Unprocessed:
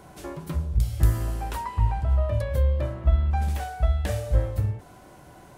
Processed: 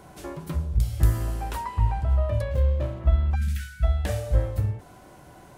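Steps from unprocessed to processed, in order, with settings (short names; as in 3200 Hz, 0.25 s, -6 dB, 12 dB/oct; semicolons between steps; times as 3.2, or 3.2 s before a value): 2.51–3 median filter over 25 samples; 3.35–3.84 spectral delete 250–1300 Hz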